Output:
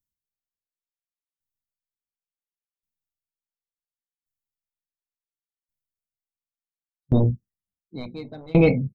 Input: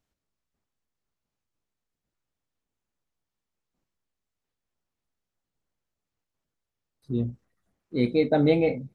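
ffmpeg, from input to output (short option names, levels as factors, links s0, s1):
-filter_complex "[0:a]afftdn=nr=28:nf=-42,acrossover=split=230[s0][s1];[s0]aeval=exprs='0.112*sin(PI/2*3.16*val(0)/0.112)':c=same[s2];[s1]highshelf=f=3600:g=7[s3];[s2][s3]amix=inputs=2:normalize=0,acontrast=49,aemphasis=mode=production:type=75fm,asplit=2[s4][s5];[s5]adelay=1078,lowpass=f=1700:p=1,volume=0.251,asplit=2[s6][s7];[s7]adelay=1078,lowpass=f=1700:p=1,volume=0.26,asplit=2[s8][s9];[s9]adelay=1078,lowpass=f=1700:p=1,volume=0.26[s10];[s6][s8][s10]amix=inputs=3:normalize=0[s11];[s4][s11]amix=inputs=2:normalize=0,aeval=exprs='val(0)*pow(10,-30*if(lt(mod(0.7*n/s,1),2*abs(0.7)/1000),1-mod(0.7*n/s,1)/(2*abs(0.7)/1000),(mod(0.7*n/s,1)-2*abs(0.7)/1000)/(1-2*abs(0.7)/1000))/20)':c=same,volume=1.12"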